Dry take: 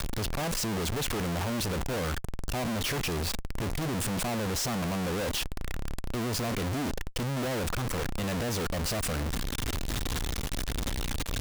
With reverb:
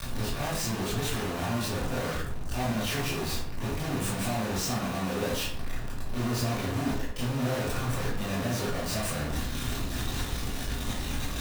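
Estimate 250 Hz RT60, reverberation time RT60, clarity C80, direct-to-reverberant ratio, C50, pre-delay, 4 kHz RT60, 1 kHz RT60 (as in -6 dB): 0.70 s, 0.60 s, 6.5 dB, -9.5 dB, 2.5 dB, 18 ms, 0.40 s, 0.50 s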